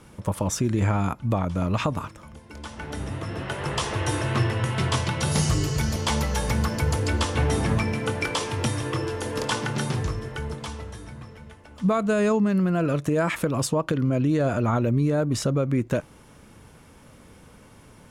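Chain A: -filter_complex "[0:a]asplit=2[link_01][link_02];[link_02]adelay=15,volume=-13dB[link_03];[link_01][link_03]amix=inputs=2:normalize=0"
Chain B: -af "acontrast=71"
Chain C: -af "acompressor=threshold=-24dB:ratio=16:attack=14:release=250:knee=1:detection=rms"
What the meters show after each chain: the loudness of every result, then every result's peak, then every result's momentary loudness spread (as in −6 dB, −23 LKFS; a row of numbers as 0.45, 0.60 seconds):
−25.0, −19.0, −30.0 LKFS; −10.5, −6.0, −13.0 dBFS; 11, 11, 7 LU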